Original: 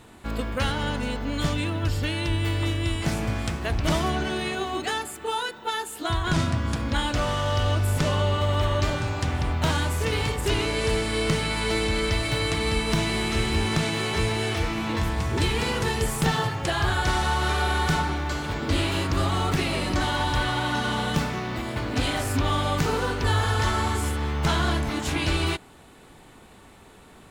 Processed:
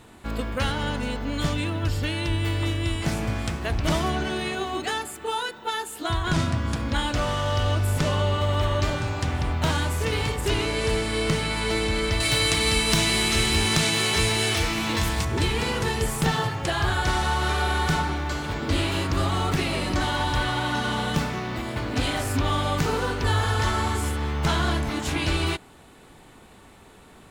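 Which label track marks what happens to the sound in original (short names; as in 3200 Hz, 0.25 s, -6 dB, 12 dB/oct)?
12.200000	15.250000	high shelf 2600 Hz +11 dB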